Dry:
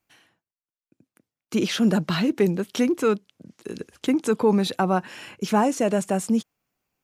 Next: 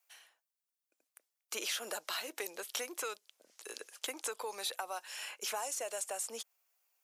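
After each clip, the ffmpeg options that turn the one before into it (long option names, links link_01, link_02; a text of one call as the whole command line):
ffmpeg -i in.wav -filter_complex "[0:a]highpass=frequency=550:width=0.5412,highpass=frequency=550:width=1.3066,highshelf=frequency=4500:gain=11.5,acrossover=split=3200|7400[link_01][link_02][link_03];[link_01]acompressor=threshold=-35dB:ratio=4[link_04];[link_02]acompressor=threshold=-41dB:ratio=4[link_05];[link_03]acompressor=threshold=-37dB:ratio=4[link_06];[link_04][link_05][link_06]amix=inputs=3:normalize=0,volume=-4.5dB" out.wav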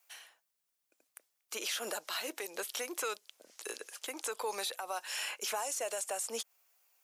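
ffmpeg -i in.wav -af "alimiter=level_in=8.5dB:limit=-24dB:level=0:latency=1:release=141,volume=-8.5dB,volume=6.5dB" out.wav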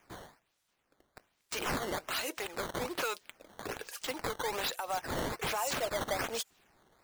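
ffmpeg -i in.wav -af "asoftclip=type=tanh:threshold=-29.5dB,flanger=delay=1.2:depth=4.5:regen=57:speed=0.8:shape=sinusoidal,acrusher=samples=10:mix=1:aa=0.000001:lfo=1:lforange=16:lforate=1.2,volume=8.5dB" out.wav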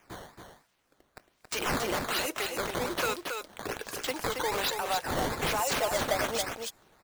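ffmpeg -i in.wav -af "aecho=1:1:275:0.531,volume=4dB" out.wav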